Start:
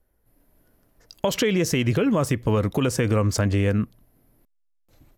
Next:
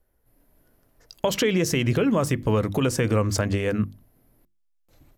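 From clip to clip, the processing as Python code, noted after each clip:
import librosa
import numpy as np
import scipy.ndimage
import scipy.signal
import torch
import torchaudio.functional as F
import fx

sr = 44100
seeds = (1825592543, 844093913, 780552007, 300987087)

y = fx.hum_notches(x, sr, base_hz=50, count=7)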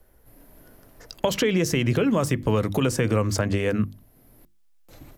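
y = fx.band_squash(x, sr, depth_pct=40)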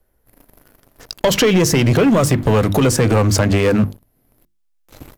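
y = fx.leveller(x, sr, passes=3)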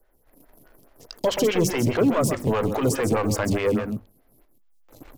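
y = fx.law_mismatch(x, sr, coded='mu')
y = y + 10.0 ** (-8.0 / 20.0) * np.pad(y, (int(130 * sr / 1000.0), 0))[:len(y)]
y = fx.stagger_phaser(y, sr, hz=4.8)
y = y * librosa.db_to_amplitude(-5.5)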